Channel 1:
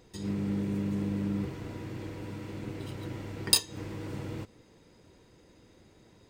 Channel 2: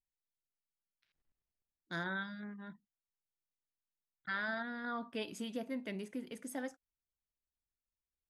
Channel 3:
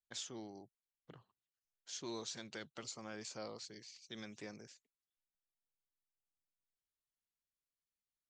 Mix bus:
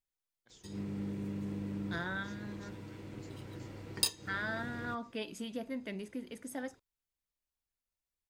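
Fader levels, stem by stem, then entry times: -7.5, +0.5, -16.0 dB; 0.50, 0.00, 0.35 s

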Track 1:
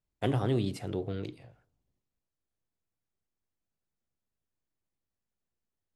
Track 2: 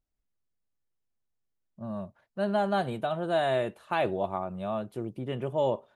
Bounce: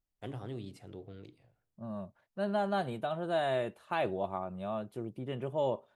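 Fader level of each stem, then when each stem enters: -13.0, -4.5 dB; 0.00, 0.00 s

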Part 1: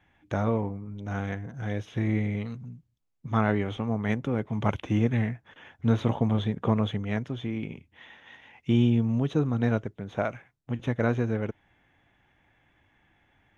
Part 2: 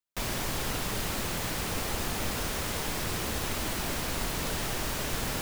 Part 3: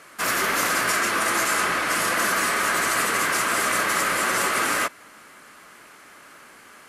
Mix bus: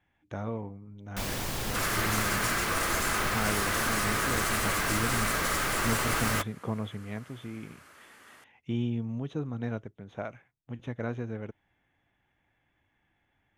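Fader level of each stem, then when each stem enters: -8.5, -1.5, -8.0 dB; 0.00, 1.00, 1.55 s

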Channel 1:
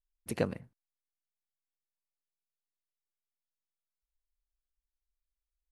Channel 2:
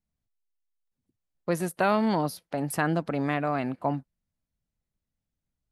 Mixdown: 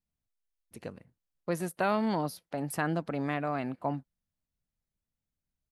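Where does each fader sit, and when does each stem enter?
-11.0, -4.5 dB; 0.45, 0.00 s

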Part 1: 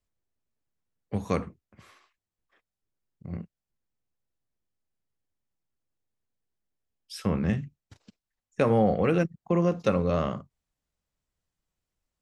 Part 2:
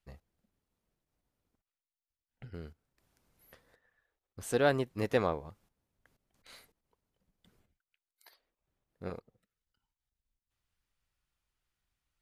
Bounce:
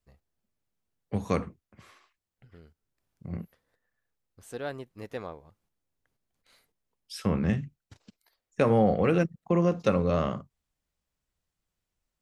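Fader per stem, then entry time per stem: 0.0, -8.5 dB; 0.00, 0.00 s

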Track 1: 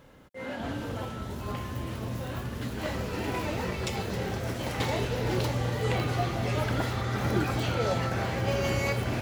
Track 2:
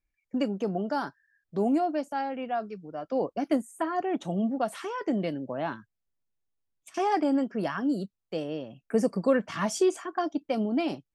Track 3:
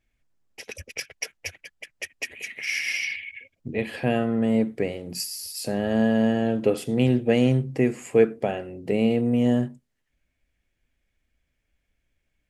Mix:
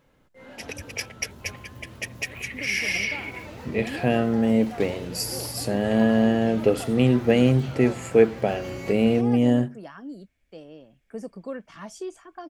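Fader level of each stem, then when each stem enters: -9.0, -11.0, +1.5 dB; 0.00, 2.20, 0.00 s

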